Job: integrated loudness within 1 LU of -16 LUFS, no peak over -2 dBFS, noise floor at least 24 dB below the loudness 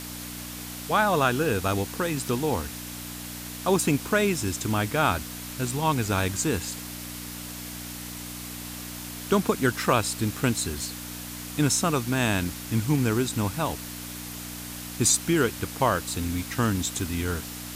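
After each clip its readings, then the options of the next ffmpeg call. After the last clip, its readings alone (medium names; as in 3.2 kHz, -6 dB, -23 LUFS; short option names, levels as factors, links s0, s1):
hum 60 Hz; highest harmonic 300 Hz; hum level -38 dBFS; noise floor -38 dBFS; noise floor target -51 dBFS; loudness -27.0 LUFS; peak level -8.0 dBFS; loudness target -16.0 LUFS
-> -af "bandreject=f=60:t=h:w=4,bandreject=f=120:t=h:w=4,bandreject=f=180:t=h:w=4,bandreject=f=240:t=h:w=4,bandreject=f=300:t=h:w=4"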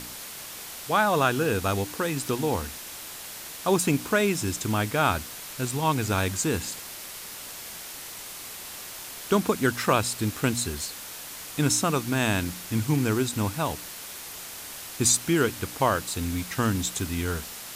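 hum not found; noise floor -40 dBFS; noise floor target -51 dBFS
-> -af "afftdn=nr=11:nf=-40"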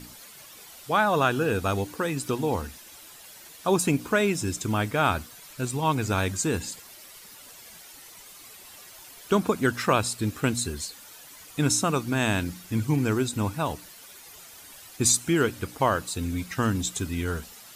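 noise floor -48 dBFS; noise floor target -50 dBFS
-> -af "afftdn=nr=6:nf=-48"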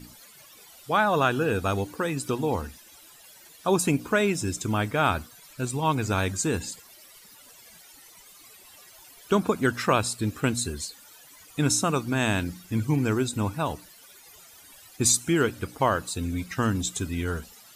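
noise floor -52 dBFS; loudness -26.0 LUFS; peak level -8.5 dBFS; loudness target -16.0 LUFS
-> -af "volume=3.16,alimiter=limit=0.794:level=0:latency=1"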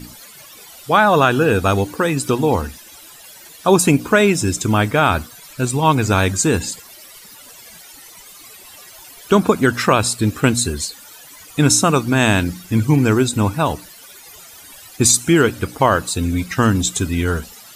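loudness -16.5 LUFS; peak level -2.0 dBFS; noise floor -42 dBFS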